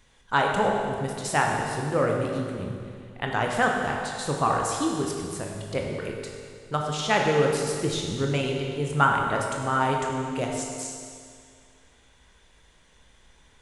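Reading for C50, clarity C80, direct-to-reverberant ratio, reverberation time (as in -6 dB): 2.0 dB, 3.0 dB, 0.0 dB, 2.2 s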